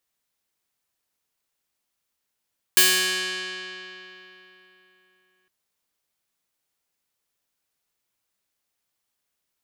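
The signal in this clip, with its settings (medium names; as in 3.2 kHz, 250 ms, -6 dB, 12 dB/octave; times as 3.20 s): plucked string F#3, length 2.71 s, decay 3.59 s, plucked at 0.28, bright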